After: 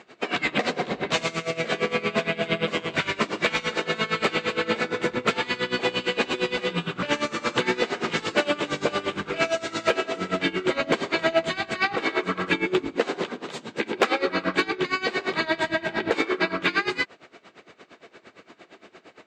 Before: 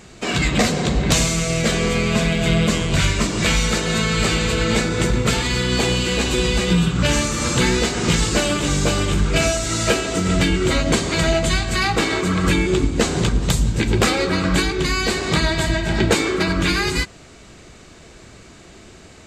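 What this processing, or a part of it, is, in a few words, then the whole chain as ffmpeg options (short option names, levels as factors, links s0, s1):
helicopter radio: -filter_complex "[0:a]highpass=340,lowpass=3000,aeval=exprs='val(0)*pow(10,-19*(0.5-0.5*cos(2*PI*8.7*n/s))/20)':c=same,asoftclip=type=hard:threshold=0.211,asettb=1/sr,asplit=3[s0][s1][s2];[s0]atrim=end=12.964[s3];[s1]atrim=start=12.96:end=14.21,asetpts=PTS-STARTPTS,afade=t=in:d=0.004:c=qsin,afade=t=out:st=1.246:d=0.004:c=qsin,highpass=220[s4];[s2]atrim=start=14.206[s5];[s3][s4]acrossfade=d=0.004:c1=hsin:c2=qsin[s6];[s6][s5]acrossfade=d=0.004:c1=qsin:c2=hsin,volume=1.41"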